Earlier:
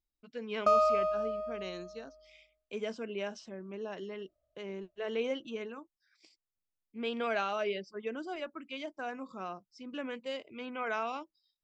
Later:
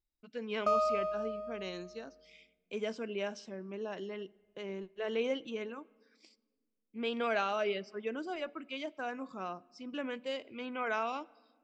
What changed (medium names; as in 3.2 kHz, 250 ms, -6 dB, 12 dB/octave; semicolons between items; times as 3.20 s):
background -4.0 dB; reverb: on, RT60 1.6 s